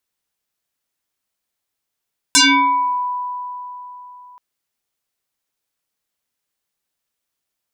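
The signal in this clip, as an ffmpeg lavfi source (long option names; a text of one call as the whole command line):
ffmpeg -f lavfi -i "aevalsrc='0.422*pow(10,-3*t/3.7)*sin(2*PI*990*t+7.4*pow(10,-3*t/0.72)*sin(2*PI*1.28*990*t))':duration=2.03:sample_rate=44100" out.wav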